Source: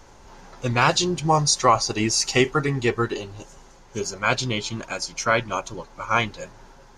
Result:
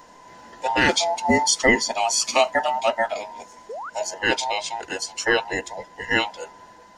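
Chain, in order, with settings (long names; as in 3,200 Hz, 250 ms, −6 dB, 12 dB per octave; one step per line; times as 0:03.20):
frequency inversion band by band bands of 1,000 Hz
sound drawn into the spectrogram rise, 0:03.69–0:03.90, 400–1,600 Hz −33 dBFS
low shelf with overshoot 190 Hz −6.5 dB, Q 1.5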